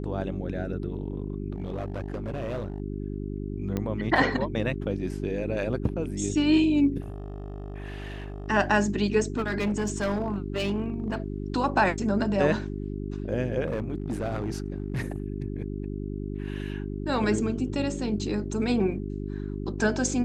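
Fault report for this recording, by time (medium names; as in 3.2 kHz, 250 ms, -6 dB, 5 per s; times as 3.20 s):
hum 50 Hz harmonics 8 -33 dBFS
1.56–2.80 s: clipped -27.5 dBFS
3.77 s: pop -16 dBFS
7.00–8.48 s: clipped -32 dBFS
9.37–11.20 s: clipped -22.5 dBFS
13.65–15.24 s: clipped -24.5 dBFS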